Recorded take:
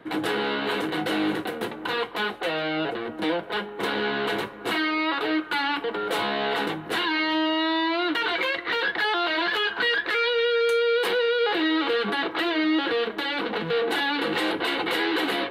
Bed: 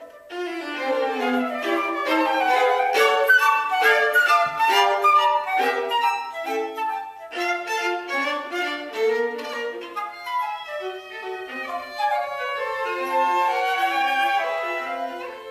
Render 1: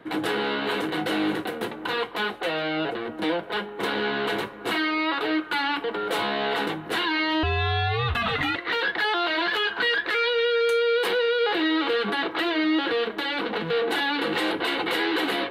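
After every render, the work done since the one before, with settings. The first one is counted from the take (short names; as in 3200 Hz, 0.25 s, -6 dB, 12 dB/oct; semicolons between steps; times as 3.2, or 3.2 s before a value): 7.43–8.56 frequency shift -230 Hz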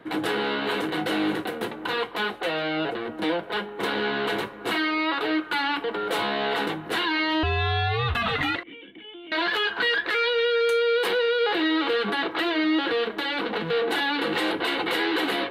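8.63–9.32 vocal tract filter i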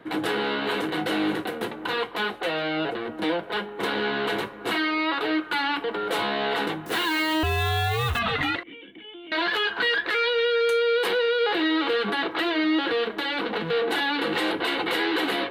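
6.86–8.19 switching spikes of -31.5 dBFS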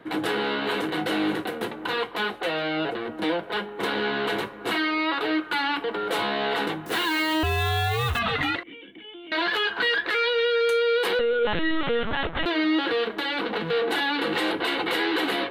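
11.19–12.46 LPC vocoder at 8 kHz pitch kept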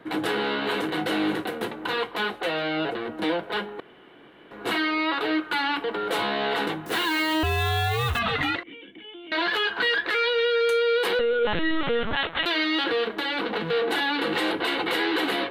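3.8–4.51 room tone; 8.54–9.45 LPF 9300 Hz; 12.16–12.84 tilt +3 dB/oct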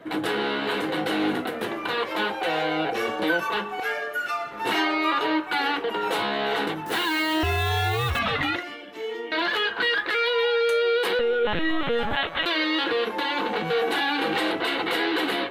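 add bed -11 dB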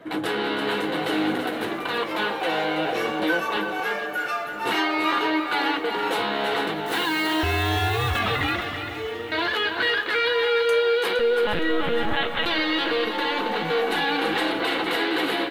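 on a send: echo 0.331 s -8 dB; on the sum: lo-fi delay 0.465 s, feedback 55%, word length 8-bit, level -12.5 dB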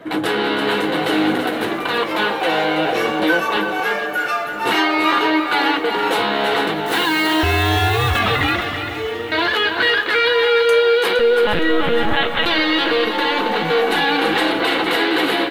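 gain +6.5 dB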